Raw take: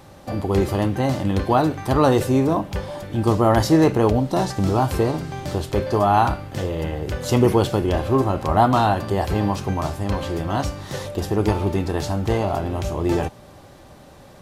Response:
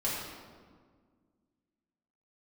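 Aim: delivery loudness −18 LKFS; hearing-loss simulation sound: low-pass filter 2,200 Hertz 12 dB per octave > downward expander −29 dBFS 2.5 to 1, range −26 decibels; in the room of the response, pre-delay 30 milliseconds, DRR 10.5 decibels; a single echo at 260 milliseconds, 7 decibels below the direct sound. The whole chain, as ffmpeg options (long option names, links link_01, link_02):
-filter_complex "[0:a]aecho=1:1:260:0.447,asplit=2[link_01][link_02];[1:a]atrim=start_sample=2205,adelay=30[link_03];[link_02][link_03]afir=irnorm=-1:irlink=0,volume=-17.5dB[link_04];[link_01][link_04]amix=inputs=2:normalize=0,lowpass=2200,agate=range=-26dB:threshold=-29dB:ratio=2.5,volume=2dB"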